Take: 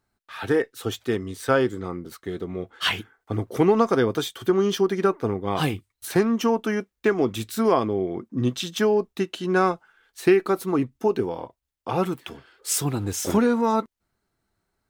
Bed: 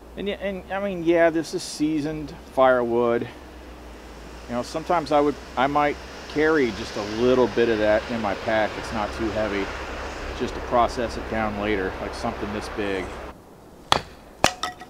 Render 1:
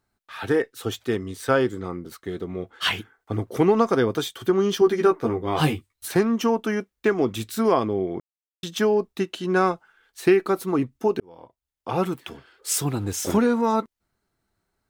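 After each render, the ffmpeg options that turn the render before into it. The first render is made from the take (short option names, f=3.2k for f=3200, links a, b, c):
-filter_complex "[0:a]asettb=1/sr,asplit=3[a][b][c];[a]atrim=end=4.804[d];[b]atrim=start=4.8:end=6.08,asetpts=PTS-STARTPTS,afade=t=in:d=0.004:c=qsin,afade=t=out:st=1.276:d=0.004:c=qsin,asplit=2[e][f];[f]adelay=13,volume=-3dB[g];[e][g]amix=inputs=2:normalize=0,atrim=end_sample=56448[h];[c]atrim=start=6.076[i];[d][h]acrossfade=d=0.004:c1=hsin:c2=qsin[j];[j][i]acrossfade=d=0.004:c1=qsin:c2=hsin,asplit=4[k][l][m][n];[k]atrim=end=8.2,asetpts=PTS-STARTPTS,afade=t=out:st=8.196:d=0.004:c=hsin[o];[l]atrim=start=8.2:end=8.63,asetpts=PTS-STARTPTS,volume=0[p];[m]atrim=start=8.63:end=11.2,asetpts=PTS-STARTPTS,afade=t=in:d=0.004:c=hsin,afade=t=out:st=2.566:d=0.004:c=hsin[q];[n]atrim=start=11.2,asetpts=PTS-STARTPTS,afade=t=in:d=0.77[r];[o][p][q][r]concat=n=4:v=0:a=1"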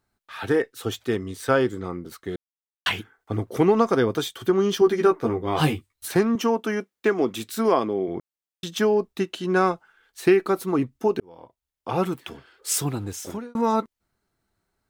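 -filter_complex "[0:a]asettb=1/sr,asplit=3[a][b][c];[a]atrim=end=6.354[d];[b]atrim=start=6.35:end=8.08,asetpts=PTS-STARTPTS,afade=t=in:d=0.004:c=qsin,afade=t=out:st=1.726:d=0.004:c=qsin,highpass=190[e];[c]atrim=start=8.076[f];[d][e]acrossfade=d=0.004:c1=hsin:c2=qsin[g];[g][f]acrossfade=d=0.004:c1=qsin:c2=hsin,asplit=4[h][i][j][k];[h]atrim=end=2.36,asetpts=PTS-STARTPTS,afade=t=out:st=2.356:d=0.004:c=hsin[l];[i]atrim=start=2.36:end=2.86,asetpts=PTS-STARTPTS,volume=0[m];[j]atrim=start=2.86:end=13.55,asetpts=PTS-STARTPTS,afade=t=in:d=0.004:c=hsin,afade=t=out:st=9.92:d=0.77[n];[k]atrim=start=13.55,asetpts=PTS-STARTPTS,afade=t=in:d=0.004:c=hsin[o];[l][m][n][o]concat=n=4:v=0:a=1"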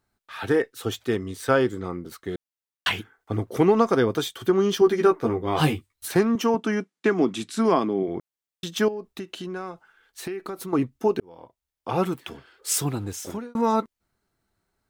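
-filter_complex "[0:a]asettb=1/sr,asplit=3[a][b][c];[a]atrim=end=6.544[d];[b]atrim=start=6.54:end=8.03,asetpts=PTS-STARTPTS,afade=t=in:d=0.004:c=qsin,afade=t=out:st=1.486:d=0.004:c=qsin,highpass=110,equalizer=f=170:t=q:w=4:g=10,equalizer=f=280:t=q:w=4:g=5,equalizer=f=510:t=q:w=4:g=-5,lowpass=f=9.6k:w=0.5412,lowpass=f=9.6k:w=1.3066[e];[c]atrim=start=8.026[f];[d][e]acrossfade=d=0.004:c1=hsin:c2=qsin[g];[g][f]acrossfade=d=0.004:c1=qsin:c2=hsin,asettb=1/sr,asplit=3[h][i][j];[h]atrim=end=8.884[k];[i]atrim=start=8.88:end=10.73,asetpts=PTS-STARTPTS,afade=t=in:d=0.004:c=qsin,afade=t=out:st=1.846:d=0.004:c=qsin,acompressor=threshold=-30dB:ratio=6:attack=3.2:release=140:knee=1:detection=peak[l];[j]atrim=start=10.726[m];[k][l]acrossfade=d=0.004:c1=hsin:c2=qsin[n];[n][m]acrossfade=d=0.004:c1=qsin:c2=hsin"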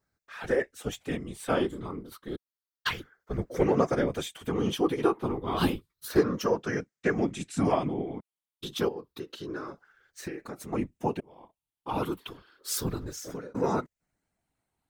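-af "afftfilt=real='re*pow(10,7/40*sin(2*PI*(0.56*log(max(b,1)*sr/1024/100)/log(2)-(0.3)*(pts-256)/sr)))':imag='im*pow(10,7/40*sin(2*PI*(0.56*log(max(b,1)*sr/1024/100)/log(2)-(0.3)*(pts-256)/sr)))':win_size=1024:overlap=0.75,afftfilt=real='hypot(re,im)*cos(2*PI*random(0))':imag='hypot(re,im)*sin(2*PI*random(1))':win_size=512:overlap=0.75"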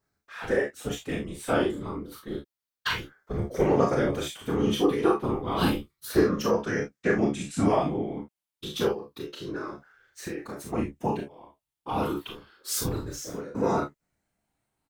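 -filter_complex "[0:a]asplit=2[a][b];[b]adelay=28,volume=-6.5dB[c];[a][c]amix=inputs=2:normalize=0,aecho=1:1:38|52:0.596|0.355"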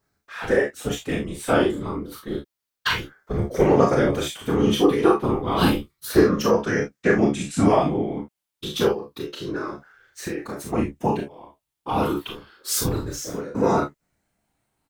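-af "volume=5.5dB"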